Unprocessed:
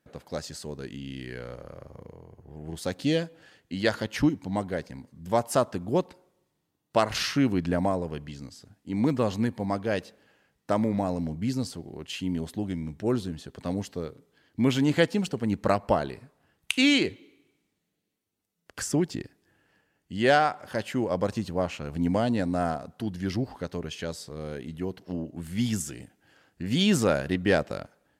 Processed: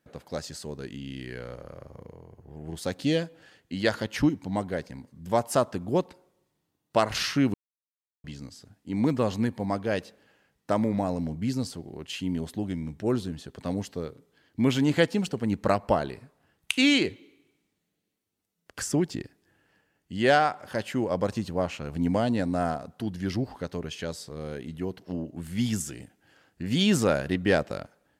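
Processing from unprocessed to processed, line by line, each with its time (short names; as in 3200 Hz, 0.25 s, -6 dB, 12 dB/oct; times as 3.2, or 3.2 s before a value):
7.54–8.24 mute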